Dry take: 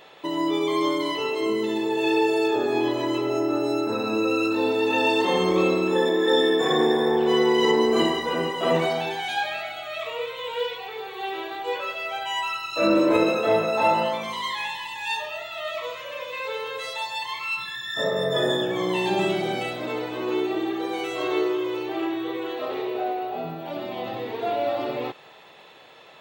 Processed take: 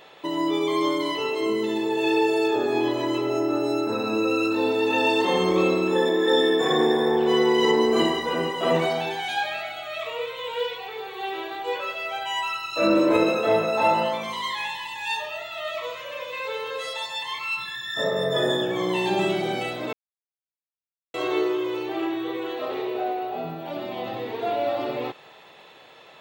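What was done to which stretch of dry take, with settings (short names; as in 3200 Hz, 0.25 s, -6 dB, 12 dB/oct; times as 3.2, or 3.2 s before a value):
16.69–17.38 doubler 13 ms -6 dB
19.93–21.14 mute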